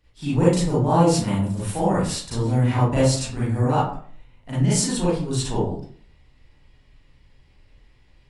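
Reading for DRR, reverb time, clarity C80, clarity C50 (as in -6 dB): -10.0 dB, 0.50 s, 6.0 dB, -1.0 dB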